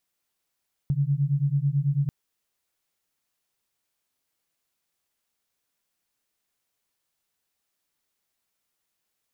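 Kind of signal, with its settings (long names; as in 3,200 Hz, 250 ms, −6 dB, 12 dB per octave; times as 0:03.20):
two tones that beat 137 Hz, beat 9.1 Hz, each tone −24 dBFS 1.19 s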